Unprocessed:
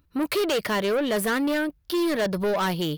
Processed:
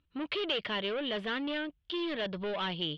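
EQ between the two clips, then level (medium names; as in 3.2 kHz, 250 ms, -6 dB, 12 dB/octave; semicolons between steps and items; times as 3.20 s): four-pole ladder low-pass 3.5 kHz, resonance 65%; 0.0 dB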